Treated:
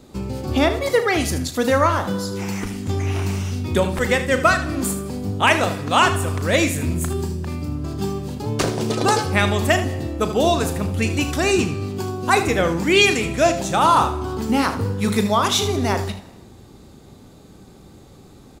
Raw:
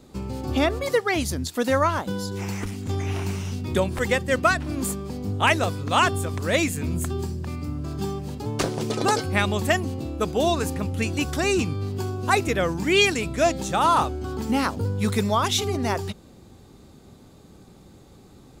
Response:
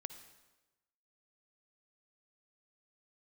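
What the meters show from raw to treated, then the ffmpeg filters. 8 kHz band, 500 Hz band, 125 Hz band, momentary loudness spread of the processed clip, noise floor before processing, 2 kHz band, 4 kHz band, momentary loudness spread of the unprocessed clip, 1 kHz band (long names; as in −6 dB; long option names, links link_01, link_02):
+4.0 dB, +4.0 dB, +3.5 dB, 10 LU, −50 dBFS, +4.0 dB, +4.0 dB, 10 LU, +4.5 dB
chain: -filter_complex "[0:a]aecho=1:1:36|78:0.266|0.251,asplit=2[link_01][link_02];[1:a]atrim=start_sample=2205[link_03];[link_02][link_03]afir=irnorm=-1:irlink=0,volume=5dB[link_04];[link_01][link_04]amix=inputs=2:normalize=0,volume=-3dB"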